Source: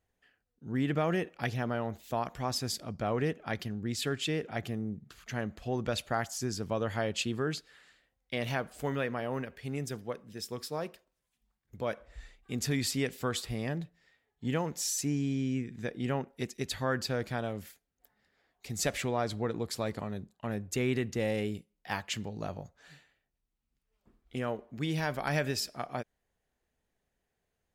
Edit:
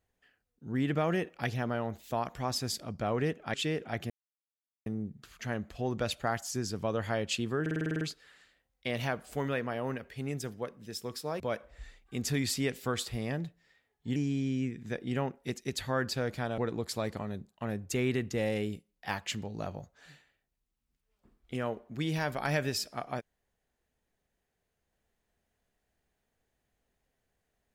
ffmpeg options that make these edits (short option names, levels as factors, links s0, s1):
-filter_complex "[0:a]asplit=14[s0][s1][s2][s3][s4][s5][s6][s7][s8][s9][s10][s11][s12][s13];[s0]atrim=end=3.542[s14];[s1]atrim=start=4.168:end=4.73,asetpts=PTS-STARTPTS,afade=t=out:st=0.558:d=0.004:c=hsin,apad=pad_dur=0.76[s15];[s2]atrim=start=4.73:end=7.532,asetpts=PTS-STARTPTS,afade=t=in:d=0.004:c=hsin[s16];[s3]atrim=start=7.478:end=7.532[s17];[s4]atrim=start=7.478:end=7.532[s18];[s5]atrim=start=7.478:end=7.532[s19];[s6]atrim=start=7.478:end=7.532[s20];[s7]atrim=start=7.478:end=7.532[s21];[s8]atrim=start=7.478:end=7.532[s22];[s9]atrim=start=7.478:end=7.532[s23];[s10]atrim=start=7.478:end=10.872[s24];[s11]atrim=start=11.768:end=14.532[s25];[s12]atrim=start=15.088:end=17.512[s26];[s13]atrim=start=19.398[s27];[s15][s16]concat=n=2:v=0:a=1[s28];[s14][s28]acrossfade=d=0.004:c1=hsin:c2=hsin[s29];[s29][s17]acrossfade=d=0.004:c1=hsin:c2=hsin[s30];[s30][s18]acrossfade=d=0.004:c1=hsin:c2=hsin[s31];[s31][s19]acrossfade=d=0.004:c1=hsin:c2=hsin[s32];[s32][s20]acrossfade=d=0.004:c1=hsin:c2=hsin[s33];[s33][s21]acrossfade=d=0.004:c1=hsin:c2=hsin[s34];[s34][s22]acrossfade=d=0.004:c1=hsin:c2=hsin[s35];[s35][s23]acrossfade=d=0.004:c1=hsin:c2=hsin[s36];[s36][s24]acrossfade=d=0.004:c1=hsin:c2=hsin[s37];[s37][s25]acrossfade=d=0.004:c1=hsin:c2=hsin[s38];[s38][s26]acrossfade=d=0.004:c1=hsin:c2=hsin[s39];[s39][s27]acrossfade=d=0.004:c1=hsin:c2=hsin"